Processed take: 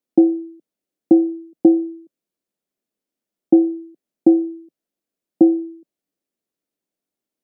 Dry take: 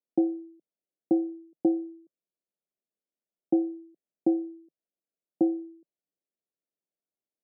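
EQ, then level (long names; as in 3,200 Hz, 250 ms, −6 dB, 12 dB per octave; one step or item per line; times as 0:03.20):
parametric band 260 Hz +7 dB 1.1 octaves
+7.0 dB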